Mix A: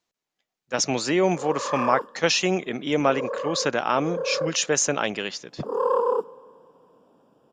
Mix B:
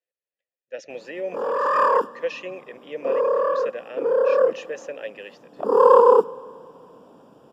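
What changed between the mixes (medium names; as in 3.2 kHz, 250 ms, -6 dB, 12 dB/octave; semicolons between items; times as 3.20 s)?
speech: add vowel filter e; background +9.5 dB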